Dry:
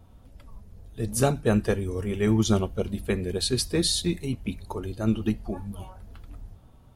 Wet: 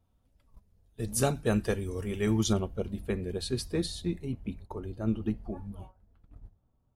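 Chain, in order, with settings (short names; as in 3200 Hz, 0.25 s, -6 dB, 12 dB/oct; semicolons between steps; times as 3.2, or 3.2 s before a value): gate -39 dBFS, range -14 dB; high shelf 2200 Hz +3.5 dB, from 2.53 s -6.5 dB, from 3.86 s -12 dB; gain -5 dB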